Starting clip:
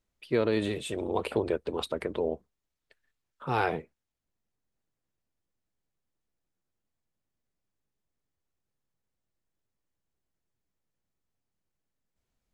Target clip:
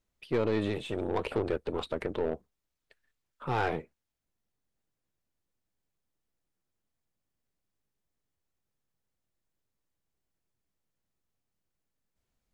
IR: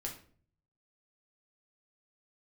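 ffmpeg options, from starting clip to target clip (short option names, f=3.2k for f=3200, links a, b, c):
-filter_complex "[0:a]asoftclip=type=tanh:threshold=-20.5dB,acrossover=split=3900[a][b];[b]acompressor=threshold=-56dB:ratio=4:attack=1:release=60[c];[a][c]amix=inputs=2:normalize=0,aeval=exprs='0.1*(cos(1*acos(clip(val(0)/0.1,-1,1)))-cos(1*PI/2))+0.00891*(cos(4*acos(clip(val(0)/0.1,-1,1)))-cos(4*PI/2))+0.00158*(cos(8*acos(clip(val(0)/0.1,-1,1)))-cos(8*PI/2))':c=same"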